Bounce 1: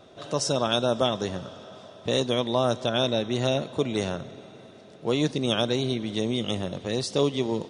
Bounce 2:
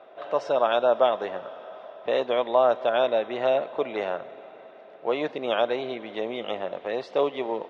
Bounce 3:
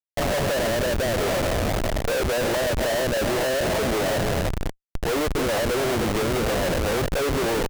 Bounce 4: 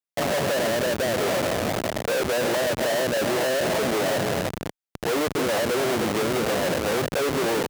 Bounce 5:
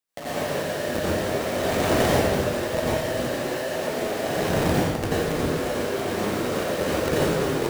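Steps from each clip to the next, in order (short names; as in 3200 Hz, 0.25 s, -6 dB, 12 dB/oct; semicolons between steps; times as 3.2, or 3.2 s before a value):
Chebyshev band-pass 630–2400 Hz, order 2; tilt -2.5 dB/oct; gain +5 dB
treble ducked by the level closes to 370 Hz, closed at -17.5 dBFS; echo 0.306 s -15 dB; Schmitt trigger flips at -38 dBFS; gain +6.5 dB
HPF 140 Hz 12 dB/oct
soft clip -20 dBFS, distortion -18 dB; negative-ratio compressor -31 dBFS, ratio -0.5; plate-style reverb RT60 1.6 s, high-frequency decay 0.8×, pre-delay 75 ms, DRR -9.5 dB; gain -1.5 dB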